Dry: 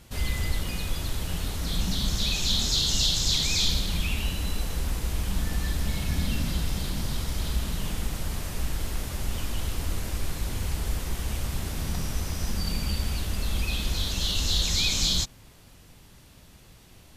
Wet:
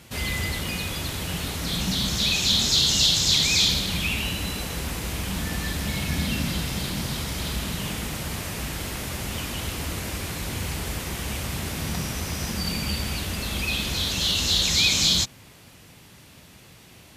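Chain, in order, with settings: high-pass 91 Hz 12 dB/octave; peaking EQ 2.3 kHz +3.5 dB 0.85 oct; trim +4.5 dB

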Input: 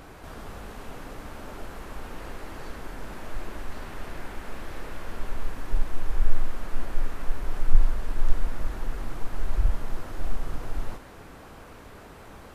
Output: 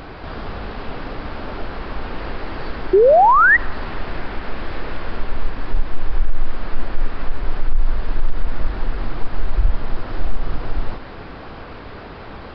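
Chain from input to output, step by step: resampled via 11.025 kHz; in parallel at -2.5 dB: compression, threshold -29 dBFS, peak gain reduction 21 dB; on the sum: painted sound rise, 2.93–3.57 s, 360–2000 Hz -13 dBFS; on a send at -23.5 dB: reverberation RT60 2.1 s, pre-delay 3 ms; on the sum: loudness maximiser +11 dB; trim -5 dB

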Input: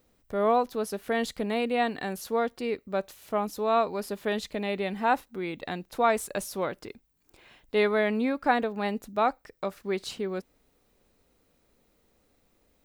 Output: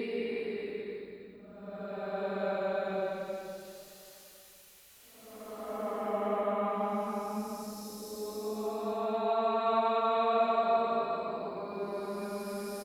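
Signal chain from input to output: vibrato 7.9 Hz 41 cents; Paulstretch 9.5×, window 0.25 s, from 2.69 s; echo from a far wall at 180 m, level -23 dB; trim -5 dB

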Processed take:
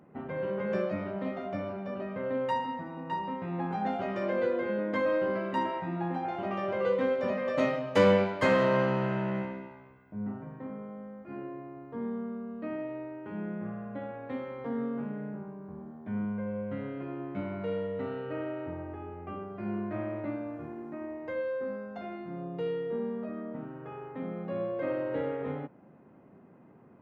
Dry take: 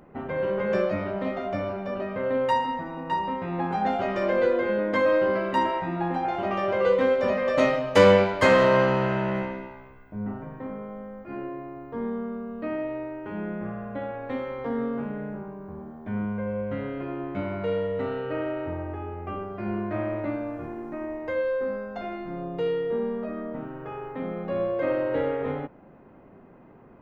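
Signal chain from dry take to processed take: high-pass 140 Hz 12 dB/octave; tone controls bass +7 dB, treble -3 dB; trim -7 dB

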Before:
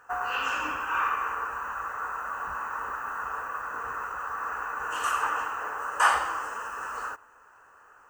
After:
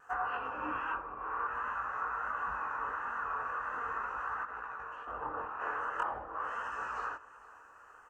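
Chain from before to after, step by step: low-pass that closes with the level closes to 500 Hz, closed at -23.5 dBFS; 4.43–5.61 s: compressor with a negative ratio -37 dBFS, ratio -0.5; chorus voices 2, 0.44 Hz, delay 21 ms, depth 4.9 ms; vibrato 1.4 Hz 30 cents; feedback delay 454 ms, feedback 59%, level -21 dB

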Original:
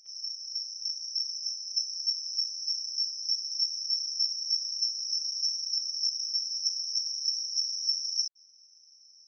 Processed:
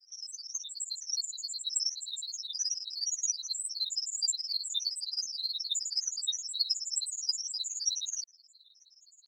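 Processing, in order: granulator 67 ms, grains 19 per s, pitch spread up and down by 7 st

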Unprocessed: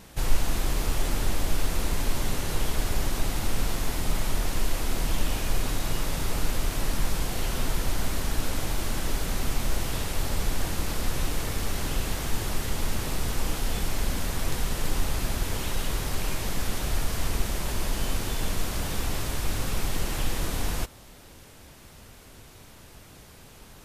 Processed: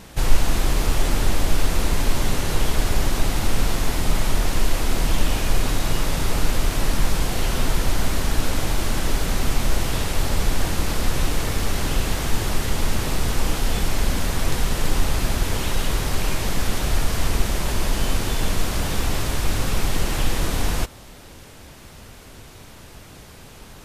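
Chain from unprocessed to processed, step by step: treble shelf 10 kHz -5 dB; trim +6.5 dB

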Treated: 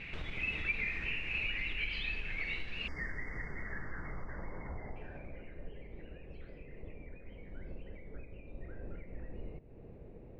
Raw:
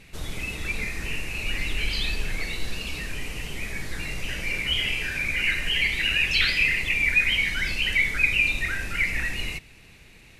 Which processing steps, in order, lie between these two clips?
spectral selection erased 2.87–4.96 s, 2.2–4.6 kHz; compression 4:1, threshold -40 dBFS, peak gain reduction 20.5 dB; low-pass sweep 2.5 kHz -> 520 Hz, 2.90–5.65 s; trim +1 dB

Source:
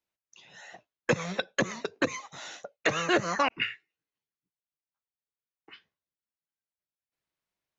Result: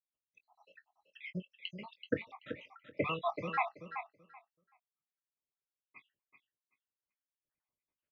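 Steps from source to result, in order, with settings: random holes in the spectrogram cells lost 80%; Chebyshev low-pass 2.9 kHz, order 3; doubling 21 ms -12 dB; feedback delay 366 ms, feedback 17%, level -9 dB; speed mistake 25 fps video run at 24 fps; trim -1.5 dB

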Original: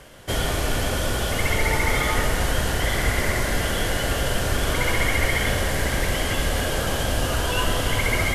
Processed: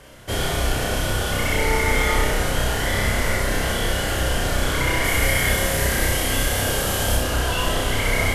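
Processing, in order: 5.04–7.17 s: treble shelf 8 kHz +10 dB; flutter echo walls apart 5.4 m, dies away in 0.56 s; trim -1.5 dB

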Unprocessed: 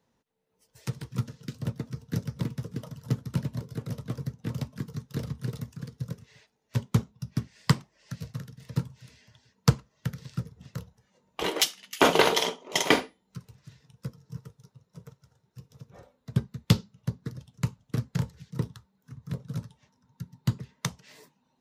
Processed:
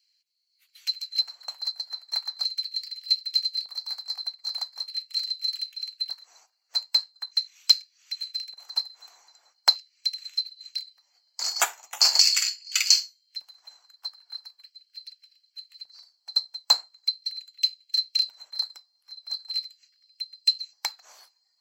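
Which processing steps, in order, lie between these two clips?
split-band scrambler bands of 4 kHz; LFO high-pass square 0.41 Hz 780–2600 Hz

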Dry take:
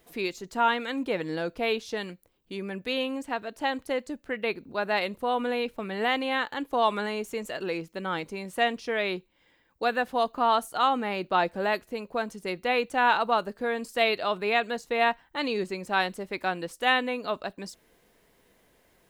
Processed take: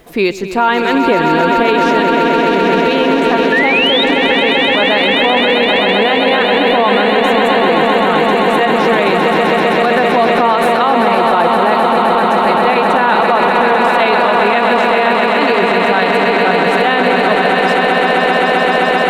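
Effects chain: treble shelf 3.6 kHz -9.5 dB; painted sound rise, 3.52–4.04 s, 1.7–3.9 kHz -27 dBFS; echo with a slow build-up 130 ms, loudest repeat 8, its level -8 dB; reverse; upward compressor, threshold -34 dBFS; reverse; loudness maximiser +20.5 dB; trim -2 dB

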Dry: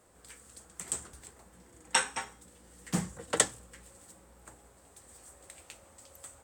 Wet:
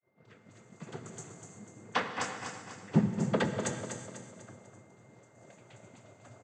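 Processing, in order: tilt EQ -3 dB/octave; bands offset in time lows, highs 260 ms, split 5 kHz; noise-vocoded speech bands 16; whistle 2.1 kHz -66 dBFS; on a send: feedback delay 247 ms, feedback 45%, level -7 dB; on the sum: expander -52 dBFS; gated-style reverb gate 410 ms flat, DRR 7 dB

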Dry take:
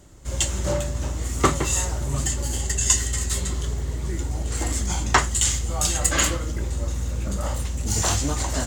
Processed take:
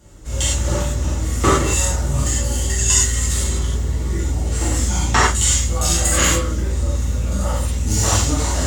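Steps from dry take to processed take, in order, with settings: gated-style reverb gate 130 ms flat, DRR -7 dB; trim -3 dB

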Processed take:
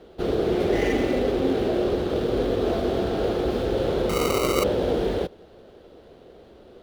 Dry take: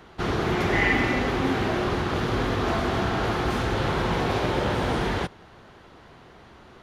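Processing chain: median filter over 9 samples; graphic EQ 125/500/1000/2000/4000/8000 Hz -7/+11/-11/-8/+5/-8 dB; 4.09–4.64 s: sample-rate reducer 1.7 kHz, jitter 0%

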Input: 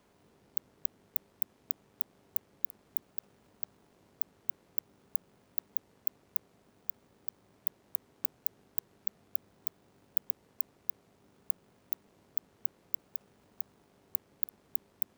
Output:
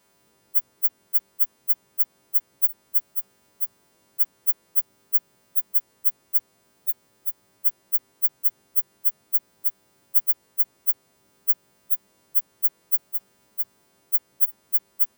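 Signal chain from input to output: partials quantised in pitch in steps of 2 st; hum notches 50/100 Hz

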